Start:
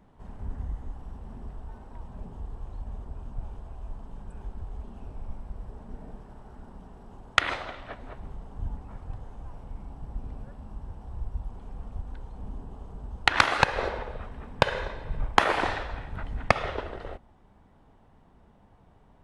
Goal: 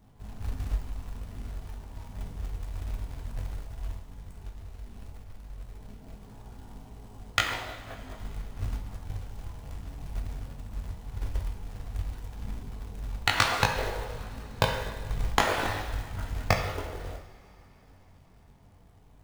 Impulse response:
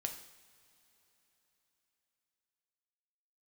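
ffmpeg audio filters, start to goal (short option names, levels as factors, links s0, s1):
-filter_complex "[0:a]bass=f=250:g=6,treble=f=4000:g=8,asplit=3[s0][s1][s2];[s0]afade=t=out:st=3.96:d=0.02[s3];[s1]acompressor=threshold=0.0158:ratio=3,afade=t=in:st=3.96:d=0.02,afade=t=out:st=6.21:d=0.02[s4];[s2]afade=t=in:st=6.21:d=0.02[s5];[s3][s4][s5]amix=inputs=3:normalize=0,flanger=delay=19:depth=2.4:speed=0.14,acrusher=bits=4:mode=log:mix=0:aa=0.000001[s6];[1:a]atrim=start_sample=2205[s7];[s6][s7]afir=irnorm=-1:irlink=0"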